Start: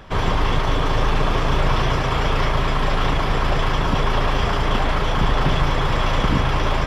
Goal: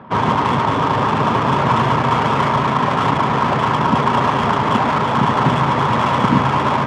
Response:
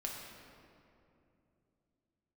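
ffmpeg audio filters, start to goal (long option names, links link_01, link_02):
-af "highpass=frequency=110:width=0.5412,highpass=frequency=110:width=1.3066,equalizer=frequency=120:width_type=q:width=4:gain=3,equalizer=frequency=230:width_type=q:width=4:gain=9,equalizer=frequency=950:width_type=q:width=4:gain=9,equalizer=frequency=1300:width_type=q:width=4:gain=3,lowpass=frequency=4500:width=0.5412,lowpass=frequency=4500:width=1.3066,adynamicsmooth=sensitivity=1.5:basefreq=1600,volume=3dB"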